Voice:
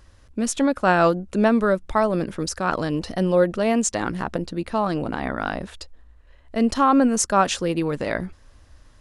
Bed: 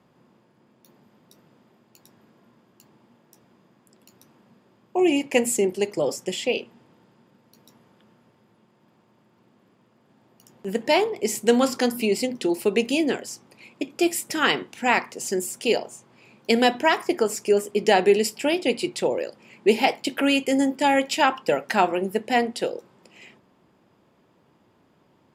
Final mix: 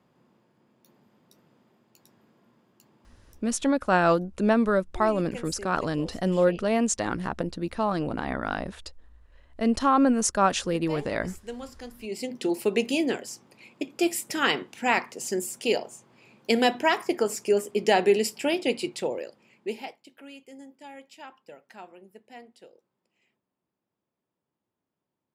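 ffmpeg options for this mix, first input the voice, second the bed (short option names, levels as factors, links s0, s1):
-filter_complex "[0:a]adelay=3050,volume=0.668[s0];[1:a]volume=3.76,afade=t=out:st=3.33:d=0.49:silence=0.188365,afade=t=in:st=11.99:d=0.49:silence=0.149624,afade=t=out:st=18.69:d=1.3:silence=0.0794328[s1];[s0][s1]amix=inputs=2:normalize=0"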